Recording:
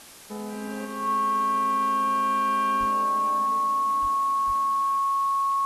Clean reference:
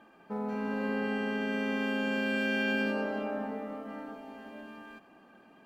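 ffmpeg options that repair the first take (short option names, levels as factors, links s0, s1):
-filter_complex "[0:a]bandreject=f=1100:w=30,asplit=3[s0][s1][s2];[s0]afade=t=out:st=2.79:d=0.02[s3];[s1]highpass=f=140:w=0.5412,highpass=f=140:w=1.3066,afade=t=in:st=2.79:d=0.02,afade=t=out:st=2.91:d=0.02[s4];[s2]afade=t=in:st=2.91:d=0.02[s5];[s3][s4][s5]amix=inputs=3:normalize=0,asplit=3[s6][s7][s8];[s6]afade=t=out:st=4.01:d=0.02[s9];[s7]highpass=f=140:w=0.5412,highpass=f=140:w=1.3066,afade=t=in:st=4.01:d=0.02,afade=t=out:st=4.13:d=0.02[s10];[s8]afade=t=in:st=4.13:d=0.02[s11];[s9][s10][s11]amix=inputs=3:normalize=0,asplit=3[s12][s13][s14];[s12]afade=t=out:st=4.46:d=0.02[s15];[s13]highpass=f=140:w=0.5412,highpass=f=140:w=1.3066,afade=t=in:st=4.46:d=0.02,afade=t=out:st=4.58:d=0.02[s16];[s14]afade=t=in:st=4.58:d=0.02[s17];[s15][s16][s17]amix=inputs=3:normalize=0,afwtdn=0.005,asetnsamples=n=441:p=0,asendcmd='0.85 volume volume 4.5dB',volume=1"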